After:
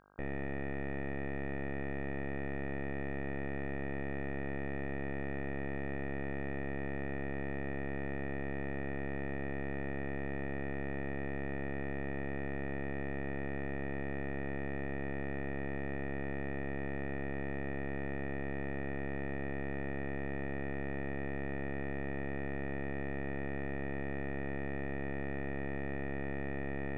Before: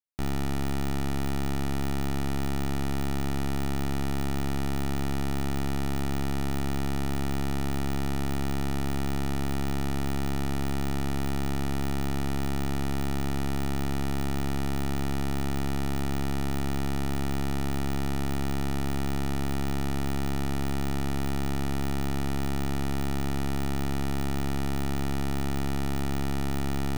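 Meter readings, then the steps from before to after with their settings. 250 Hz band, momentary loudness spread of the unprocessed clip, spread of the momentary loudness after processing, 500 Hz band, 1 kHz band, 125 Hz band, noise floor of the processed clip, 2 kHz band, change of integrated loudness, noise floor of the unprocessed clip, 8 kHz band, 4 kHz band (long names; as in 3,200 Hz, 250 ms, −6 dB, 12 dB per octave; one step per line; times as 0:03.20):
−9.0 dB, 0 LU, 0 LU, −3.0 dB, −10.5 dB, −11.5 dB, −37 dBFS, −1.0 dB, −8.5 dB, −26 dBFS, below −40 dB, −23.0 dB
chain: formant resonators in series e
hum with harmonics 50 Hz, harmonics 32, −75 dBFS 0 dB per octave
level +8.5 dB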